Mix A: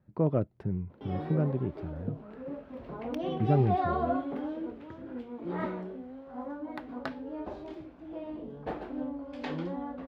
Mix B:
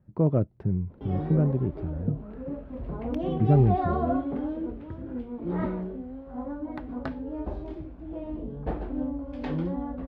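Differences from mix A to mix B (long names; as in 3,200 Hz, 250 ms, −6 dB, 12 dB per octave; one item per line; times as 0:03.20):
background: remove high-pass filter 170 Hz 6 dB per octave
master: add spectral tilt −2 dB per octave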